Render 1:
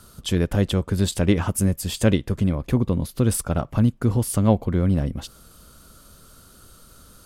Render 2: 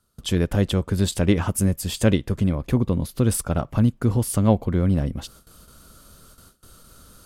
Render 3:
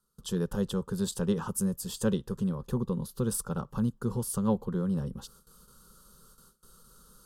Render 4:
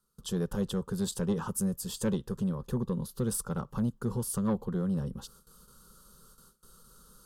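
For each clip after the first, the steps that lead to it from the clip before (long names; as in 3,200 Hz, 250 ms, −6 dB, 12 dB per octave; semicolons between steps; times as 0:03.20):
noise gate with hold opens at −38 dBFS
phaser with its sweep stopped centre 440 Hz, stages 8; level −6 dB
soft clipping −20.5 dBFS, distortion −19 dB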